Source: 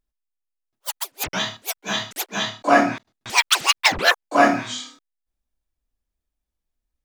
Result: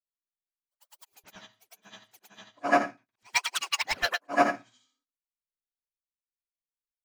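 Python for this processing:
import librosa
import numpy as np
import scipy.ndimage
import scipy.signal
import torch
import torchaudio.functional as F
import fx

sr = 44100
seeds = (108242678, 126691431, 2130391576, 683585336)

y = fx.frame_reverse(x, sr, frame_ms=229.0)
y = fx.notch(y, sr, hz=3600.0, q=14.0)
y = fx.upward_expand(y, sr, threshold_db=-35.0, expansion=2.5)
y = y * librosa.db_to_amplitude(-1.5)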